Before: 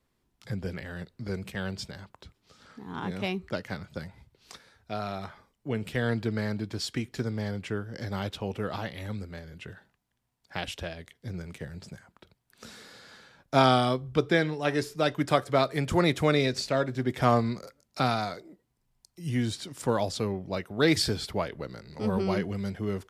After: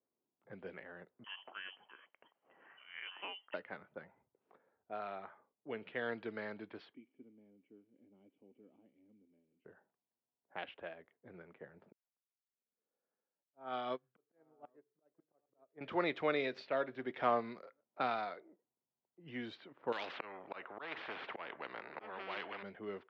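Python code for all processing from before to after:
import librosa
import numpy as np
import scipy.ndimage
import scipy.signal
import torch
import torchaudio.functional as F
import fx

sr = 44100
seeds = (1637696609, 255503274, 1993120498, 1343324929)

y = fx.chain(x, sr, fx.low_shelf(hz=290.0, db=-5.0),
    fx.freq_invert(carrier_hz=3200),
    fx.band_squash(depth_pct=70), at=(1.24, 3.54))
y = fx.chain(y, sr, fx.crossing_spikes(level_db=-27.0),
    fx.formant_cascade(vowel='i'),
    fx.low_shelf(hz=350.0, db=-8.0), at=(6.94, 9.65))
y = fx.chain(y, sr, fx.auto_swell(attack_ms=432.0),
    fx.echo_single(ms=804, db=-15.5),
    fx.upward_expand(threshold_db=-41.0, expansion=2.5), at=(11.92, 15.81))
y = fx.chain(y, sr, fx.auto_swell(attack_ms=313.0),
    fx.spectral_comp(ratio=4.0), at=(19.92, 22.63))
y = scipy.signal.sosfilt(scipy.signal.butter(4, 3200.0, 'lowpass', fs=sr, output='sos'), y)
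y = fx.env_lowpass(y, sr, base_hz=620.0, full_db=-24.0)
y = scipy.signal.sosfilt(scipy.signal.butter(2, 380.0, 'highpass', fs=sr, output='sos'), y)
y = F.gain(torch.from_numpy(y), -7.5).numpy()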